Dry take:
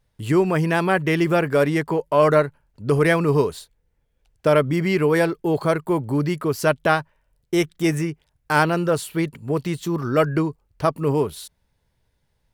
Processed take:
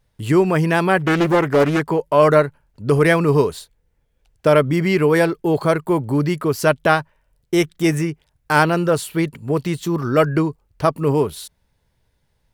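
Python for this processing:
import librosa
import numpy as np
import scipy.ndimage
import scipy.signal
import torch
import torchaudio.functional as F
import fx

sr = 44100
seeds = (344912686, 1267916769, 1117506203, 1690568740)

y = fx.doppler_dist(x, sr, depth_ms=0.5, at=(0.98, 1.8))
y = y * librosa.db_to_amplitude(3.0)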